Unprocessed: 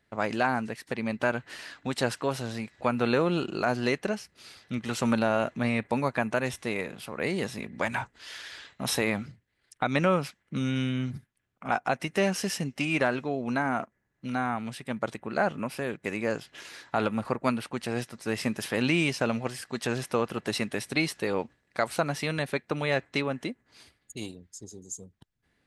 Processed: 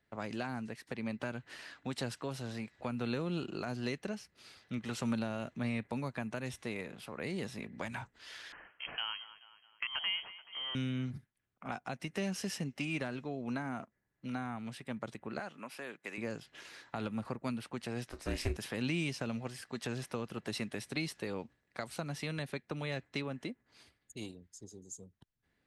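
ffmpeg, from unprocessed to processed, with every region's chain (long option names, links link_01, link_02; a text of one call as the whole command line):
ffmpeg -i in.wav -filter_complex "[0:a]asettb=1/sr,asplit=3[link_01][link_02][link_03];[link_01]atrim=end=8.524[link_04];[link_02]atrim=start=8.52:end=10.75,asetpts=PTS-STARTPTS,afade=type=in:duration=0.004:curve=qsin,afade=type=out:start_time=2.226:duration=0.004:curve=qsin,highpass=280,aecho=1:1:215|430|645|860:0.1|0.05|0.025|0.0125,atrim=end_sample=98343,lowpass=frequency=2900:width_type=q:width=0.5098,lowpass=frequency=2900:width_type=q:width=0.6013,lowpass=frequency=2900:width_type=q:width=0.9,lowpass=frequency=2900:width_type=q:width=2.563,afreqshift=-3400[link_05];[link_03]atrim=start=10.746[link_06];[link_04][link_05]acrossfade=duration=0.004:curve1=hsin:curve2=qsin[link_07];[link_07][link_06]acrossfade=duration=0.004:curve1=qsin:curve2=hsin,asettb=1/sr,asplit=3[link_08][link_09][link_10];[link_08]atrim=end=15.394[link_11];[link_09]atrim=start=15.39:end=16.18,asetpts=PTS-STARTPTS,afade=type=in:duration=0.004:curve=qsin,afade=type=out:start_time=0.786:duration=0.004:curve=qsin,highpass=330,equalizer=frequency=470:width_type=o:width=1.7:gain=-6[link_12];[link_10]atrim=start=16.176[link_13];[link_11][link_12]acrossfade=duration=0.004:curve1=hsin:curve2=qsin[link_14];[link_14][link_13]acrossfade=duration=0.004:curve1=qsin:curve2=hsin,asettb=1/sr,asplit=3[link_15][link_16][link_17];[link_15]atrim=end=18.084[link_18];[link_16]atrim=start=18.08:end=18.57,asetpts=PTS-STARTPTS,afade=type=in:duration=0.004:curve=qsin,afade=type=out:start_time=0.486:duration=0.004:curve=qsin,acontrast=53,asplit=2[link_19][link_20];[link_20]adelay=32,volume=-12dB[link_21];[link_19][link_21]amix=inputs=2:normalize=0,atrim=end_sample=21609,aeval=exprs='val(0)*sin(2*PI*150*n/s)':channel_layout=same[link_22];[link_17]atrim=start=18.566[link_23];[link_18][link_22]acrossfade=duration=0.004:curve1=hsin:curve2=qsin[link_24];[link_24][link_23]acrossfade=duration=0.004:curve1=qsin:curve2=hsin,acrossover=split=270|3000[link_25][link_26][link_27];[link_26]acompressor=threshold=-34dB:ratio=4[link_28];[link_25][link_28][link_27]amix=inputs=3:normalize=0,highshelf=frequency=6000:gain=-4.5,volume=-6dB" out.wav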